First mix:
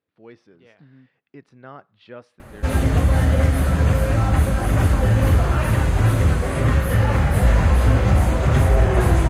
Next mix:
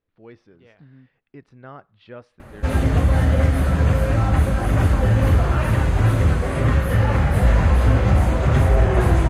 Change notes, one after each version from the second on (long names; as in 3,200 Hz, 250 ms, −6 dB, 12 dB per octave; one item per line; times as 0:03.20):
speech: remove high-pass filter 130 Hz
master: add high-shelf EQ 5,700 Hz −6.5 dB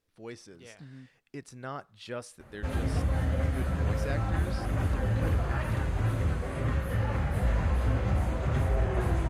speech: remove high-frequency loss of the air 350 metres
background −11.5 dB